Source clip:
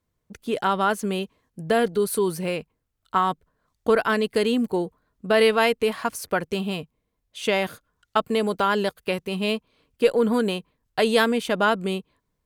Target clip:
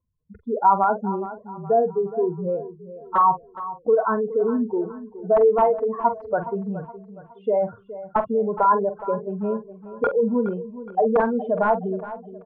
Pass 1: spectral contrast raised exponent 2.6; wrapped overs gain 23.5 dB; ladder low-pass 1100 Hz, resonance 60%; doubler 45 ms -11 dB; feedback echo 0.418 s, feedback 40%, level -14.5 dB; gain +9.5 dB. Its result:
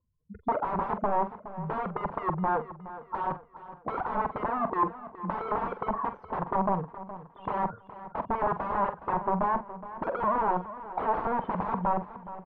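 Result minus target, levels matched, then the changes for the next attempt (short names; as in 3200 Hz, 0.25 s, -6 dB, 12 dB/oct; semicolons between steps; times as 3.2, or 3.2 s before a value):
wrapped overs: distortion +36 dB
change: wrapped overs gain 12 dB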